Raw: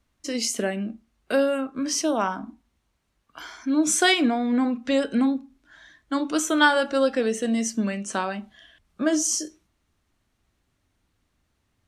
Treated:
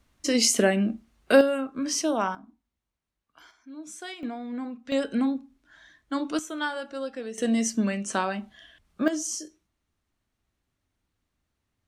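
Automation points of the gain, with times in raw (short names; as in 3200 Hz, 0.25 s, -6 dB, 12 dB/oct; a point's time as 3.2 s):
+5 dB
from 1.41 s -2 dB
from 2.35 s -13.5 dB
from 3.51 s -20 dB
from 4.23 s -11.5 dB
from 4.92 s -3.5 dB
from 6.39 s -12 dB
from 7.38 s 0 dB
from 9.08 s -7.5 dB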